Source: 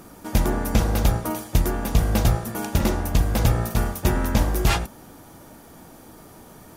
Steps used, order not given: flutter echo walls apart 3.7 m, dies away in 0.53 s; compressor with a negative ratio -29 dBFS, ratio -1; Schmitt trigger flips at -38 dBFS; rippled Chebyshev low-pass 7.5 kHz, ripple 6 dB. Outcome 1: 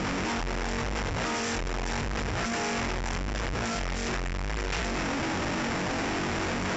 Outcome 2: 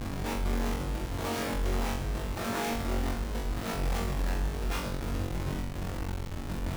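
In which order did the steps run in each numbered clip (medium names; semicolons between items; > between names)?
compressor with a negative ratio > flutter echo > Schmitt trigger > rippled Chebyshev low-pass; compressor with a negative ratio > rippled Chebyshev low-pass > Schmitt trigger > flutter echo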